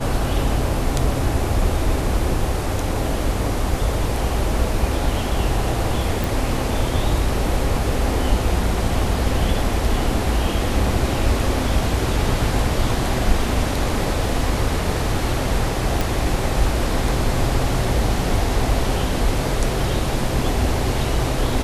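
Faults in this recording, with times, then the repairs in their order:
6.24 pop
16.01 pop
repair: de-click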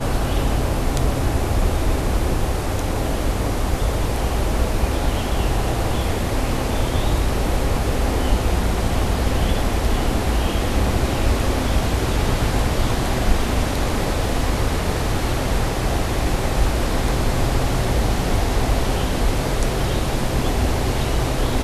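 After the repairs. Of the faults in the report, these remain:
none

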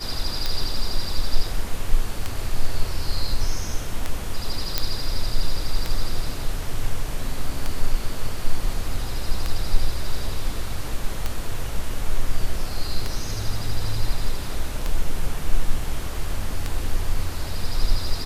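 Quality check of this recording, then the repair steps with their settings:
tick 33 1/3 rpm
4.78 pop -4 dBFS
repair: de-click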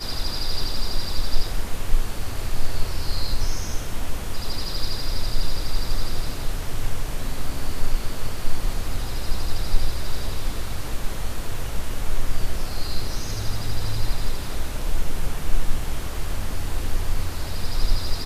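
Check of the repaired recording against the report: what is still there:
none

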